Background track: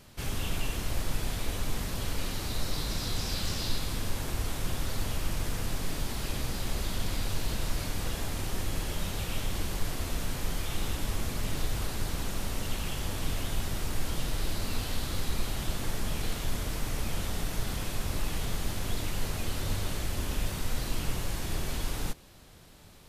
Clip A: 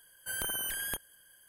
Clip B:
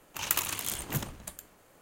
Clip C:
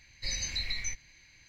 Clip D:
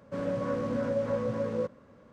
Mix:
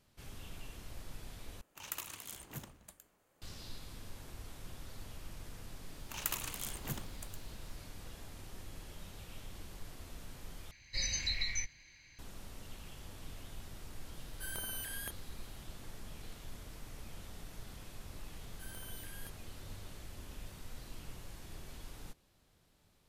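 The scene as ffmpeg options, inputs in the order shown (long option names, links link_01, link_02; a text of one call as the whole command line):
ffmpeg -i bed.wav -i cue0.wav -i cue1.wav -i cue2.wav -filter_complex "[2:a]asplit=2[link_01][link_02];[1:a]asplit=2[link_03][link_04];[0:a]volume=-16.5dB[link_05];[link_02]acrusher=bits=8:mix=0:aa=0.5[link_06];[link_05]asplit=3[link_07][link_08][link_09];[link_07]atrim=end=1.614[link_10];[link_01]atrim=end=1.81,asetpts=PTS-STARTPTS,volume=-13.5dB[link_11];[link_08]atrim=start=3.416:end=10.714[link_12];[3:a]atrim=end=1.48,asetpts=PTS-STARTPTS,volume=-1.5dB[link_13];[link_09]atrim=start=12.186[link_14];[link_06]atrim=end=1.81,asetpts=PTS-STARTPTS,volume=-8.5dB,afade=type=in:duration=0.004:curve=hsin,afade=type=out:start_time=1.806:duration=0.004:curve=hsin,adelay=5950[link_15];[link_03]atrim=end=1.48,asetpts=PTS-STARTPTS,volume=-7.5dB,afade=type=in:duration=0.004:curve=hsin,afade=type=out:start_time=1.476:duration=0.004:curve=hsin,adelay=14140[link_16];[link_04]atrim=end=1.48,asetpts=PTS-STARTPTS,volume=-16.5dB,afade=type=in:duration=0.004:curve=hsin,afade=type=out:start_time=1.476:duration=0.004:curve=hsin,adelay=18330[link_17];[link_10][link_11]acrossfade=duration=0.004:curve1=hsin:curve2=hsin[link_18];[link_18][link_12]acrossfade=duration=0.004:curve1=hsin:curve2=hsin[link_19];[link_19][link_13]acrossfade=duration=0.004:curve1=hsin:curve2=hsin[link_20];[link_20][link_14]acrossfade=duration=0.004:curve1=hsin:curve2=hsin[link_21];[link_21][link_15][link_16][link_17]amix=inputs=4:normalize=0" out.wav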